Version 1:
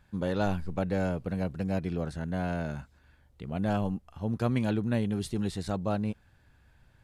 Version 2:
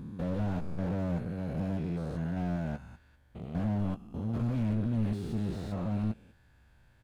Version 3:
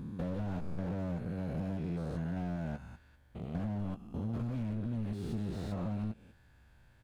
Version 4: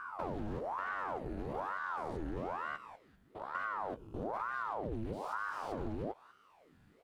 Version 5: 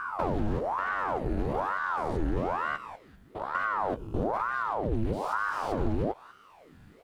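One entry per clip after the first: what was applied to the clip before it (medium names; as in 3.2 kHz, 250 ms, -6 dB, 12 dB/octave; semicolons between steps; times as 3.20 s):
spectrogram pixelated in time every 200 ms; doubling 18 ms -11.5 dB; slew-rate limiter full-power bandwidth 9.4 Hz
compression, threshold -32 dBFS, peak gain reduction 7.5 dB
ring modulator with a swept carrier 720 Hz, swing 85%, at 1.1 Hz
bass shelf 91 Hz +5.5 dB; gain riding 0.5 s; trim +9 dB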